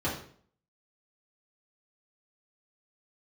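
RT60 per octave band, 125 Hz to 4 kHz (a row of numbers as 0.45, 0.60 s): 0.60, 0.60, 0.55, 0.50, 0.45, 0.45 s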